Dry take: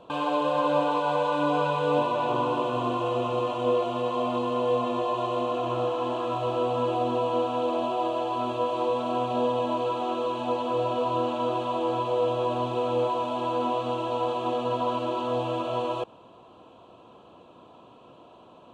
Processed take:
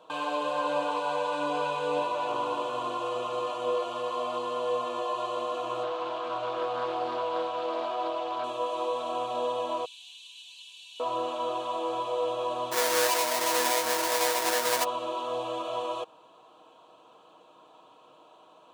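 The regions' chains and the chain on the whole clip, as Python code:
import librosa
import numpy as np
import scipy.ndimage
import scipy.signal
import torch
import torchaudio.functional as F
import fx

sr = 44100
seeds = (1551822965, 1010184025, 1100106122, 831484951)

y = fx.chain(x, sr, fx.lowpass(hz=5400.0, slope=12),
    fx.hum_notches(base_hz=50, count=10),
    fx.doppler_dist(depth_ms=0.26), at=(5.83, 8.44))
y = fx.chain(y, sr, fx.cheby2_highpass(hz=1400.0, order=4, stop_db=40),
    fx.comb(ms=3.8, depth=0.39), at=(9.85, 11.0))
y = fx.halfwave_hold(y, sr, at=(12.71, 14.83), fade=0.02)
y = fx.highpass(y, sr, hz=190.0, slope=6, at=(12.71, 14.83), fade=0.02)
y = fx.dmg_tone(y, sr, hz=940.0, level_db=-35.0, at=(12.71, 14.83), fade=0.02)
y = fx.highpass(y, sr, hz=1500.0, slope=6)
y = fx.peak_eq(y, sr, hz=2700.0, db=-5.5, octaves=1.1)
y = y + 0.41 * np.pad(y, (int(6.4 * sr / 1000.0), 0))[:len(y)]
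y = y * 10.0 ** (3.5 / 20.0)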